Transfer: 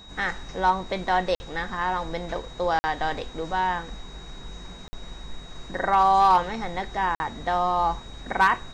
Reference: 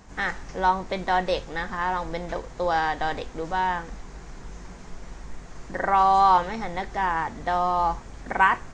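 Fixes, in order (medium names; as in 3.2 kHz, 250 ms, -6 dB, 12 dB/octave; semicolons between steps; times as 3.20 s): clip repair -11 dBFS; band-stop 3.8 kHz, Q 30; interpolate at 1.35/2.79/4.88/7.15 s, 50 ms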